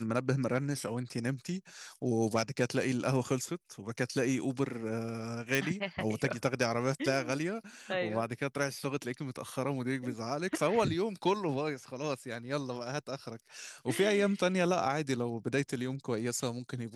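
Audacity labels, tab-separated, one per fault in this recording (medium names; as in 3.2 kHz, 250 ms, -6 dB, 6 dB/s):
5.550000	5.550000	pop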